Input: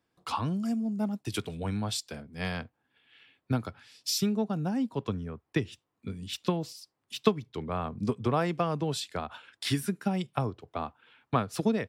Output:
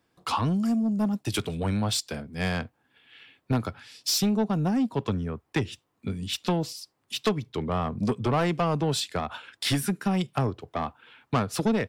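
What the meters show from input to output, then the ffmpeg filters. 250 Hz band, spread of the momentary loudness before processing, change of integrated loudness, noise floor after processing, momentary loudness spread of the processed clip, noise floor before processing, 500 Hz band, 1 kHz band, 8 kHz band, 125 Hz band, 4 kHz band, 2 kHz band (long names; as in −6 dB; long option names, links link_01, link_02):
+4.0 dB, 12 LU, +4.0 dB, −74 dBFS, 10 LU, −81 dBFS, +3.0 dB, +3.5 dB, +5.5 dB, +4.5 dB, +5.5 dB, +5.0 dB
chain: -af "asoftclip=type=tanh:threshold=-25.5dB,volume=7dB"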